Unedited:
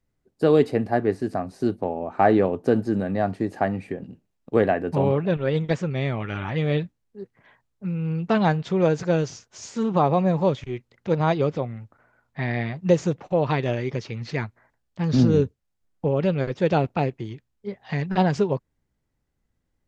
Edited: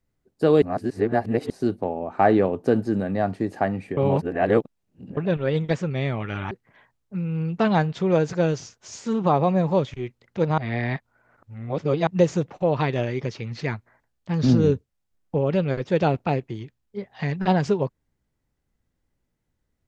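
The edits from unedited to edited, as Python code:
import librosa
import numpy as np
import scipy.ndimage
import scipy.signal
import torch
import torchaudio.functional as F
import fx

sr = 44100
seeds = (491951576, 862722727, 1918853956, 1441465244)

y = fx.edit(x, sr, fx.reverse_span(start_s=0.62, length_s=0.88),
    fx.reverse_span(start_s=3.97, length_s=1.2),
    fx.cut(start_s=6.51, length_s=0.7),
    fx.reverse_span(start_s=11.28, length_s=1.49), tone=tone)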